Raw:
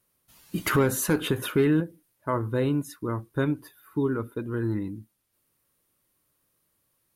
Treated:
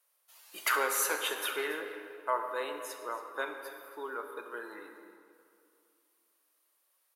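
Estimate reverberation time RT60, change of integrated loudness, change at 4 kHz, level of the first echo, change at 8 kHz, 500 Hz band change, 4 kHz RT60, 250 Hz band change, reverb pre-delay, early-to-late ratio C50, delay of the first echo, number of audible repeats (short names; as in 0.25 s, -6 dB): 2.4 s, -7.0 dB, -0.5 dB, -16.0 dB, -1.0 dB, -9.5 dB, 1.5 s, -23.0 dB, 26 ms, 6.0 dB, 0.278 s, 1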